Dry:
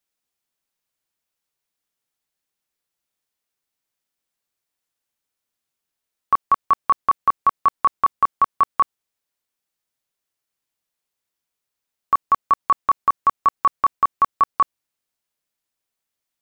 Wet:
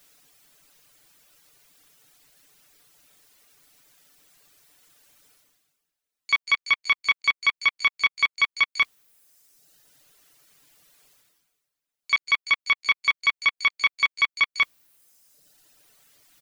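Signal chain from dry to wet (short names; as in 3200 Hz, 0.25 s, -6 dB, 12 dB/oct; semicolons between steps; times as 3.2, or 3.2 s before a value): self-modulated delay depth 0.21 ms; reverb removal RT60 0.91 s; comb 6.8 ms, depth 50%; harmoniser +12 st -17 dB; reverse; upward compressor, threshold -35 dBFS; reverse; bell 920 Hz -3.5 dB 0.47 oct; gain -2 dB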